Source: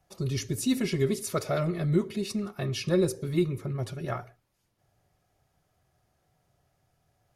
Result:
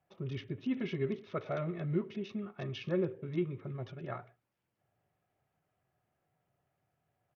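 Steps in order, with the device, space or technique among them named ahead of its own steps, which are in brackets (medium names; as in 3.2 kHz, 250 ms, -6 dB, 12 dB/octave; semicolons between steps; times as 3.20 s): Bluetooth headset (high-pass 110 Hz 12 dB/octave; resampled via 8 kHz; trim -7.5 dB; SBC 64 kbps 48 kHz)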